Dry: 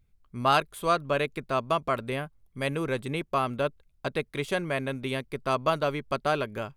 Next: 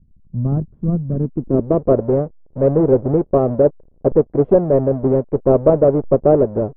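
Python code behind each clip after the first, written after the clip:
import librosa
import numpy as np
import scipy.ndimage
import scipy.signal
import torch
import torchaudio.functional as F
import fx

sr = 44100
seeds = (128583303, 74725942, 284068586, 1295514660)

y = fx.halfwave_hold(x, sr)
y = fx.filter_sweep_lowpass(y, sr, from_hz=180.0, to_hz=510.0, start_s=1.09, end_s=1.88, q=1.9)
y = scipy.signal.sosfilt(scipy.signal.butter(2, 1700.0, 'lowpass', fs=sr, output='sos'), y)
y = y * librosa.db_to_amplitude(8.0)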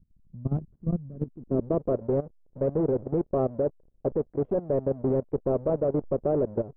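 y = fx.level_steps(x, sr, step_db=17)
y = y * librosa.db_to_amplitude(-6.5)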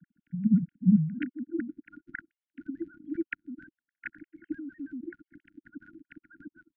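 y = fx.sine_speech(x, sr)
y = fx.brickwall_bandstop(y, sr, low_hz=320.0, high_hz=1400.0)
y = y * librosa.db_to_amplitude(8.5)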